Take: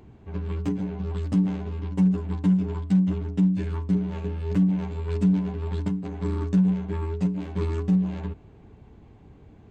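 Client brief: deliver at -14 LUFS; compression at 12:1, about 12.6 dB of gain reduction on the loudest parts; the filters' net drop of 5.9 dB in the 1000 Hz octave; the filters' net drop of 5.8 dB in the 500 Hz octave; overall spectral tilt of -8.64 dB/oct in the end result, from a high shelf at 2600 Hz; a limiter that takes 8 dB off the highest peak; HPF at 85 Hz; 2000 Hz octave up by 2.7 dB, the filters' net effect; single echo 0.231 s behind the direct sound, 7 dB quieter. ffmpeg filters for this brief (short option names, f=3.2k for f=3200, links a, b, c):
-af "highpass=85,equalizer=f=500:t=o:g=-7,equalizer=f=1k:t=o:g=-6.5,equalizer=f=2k:t=o:g=3.5,highshelf=f=2.6k:g=5,acompressor=threshold=-30dB:ratio=12,alimiter=level_in=5.5dB:limit=-24dB:level=0:latency=1,volume=-5.5dB,aecho=1:1:231:0.447,volume=22dB"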